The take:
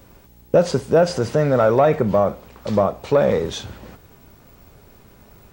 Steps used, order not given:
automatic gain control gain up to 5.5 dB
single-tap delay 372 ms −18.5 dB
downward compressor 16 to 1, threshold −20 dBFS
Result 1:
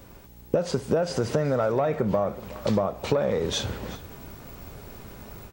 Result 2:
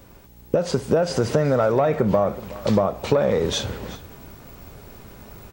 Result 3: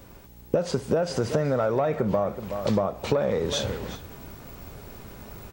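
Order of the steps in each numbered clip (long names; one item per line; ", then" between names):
automatic gain control, then downward compressor, then single-tap delay
downward compressor, then single-tap delay, then automatic gain control
single-tap delay, then automatic gain control, then downward compressor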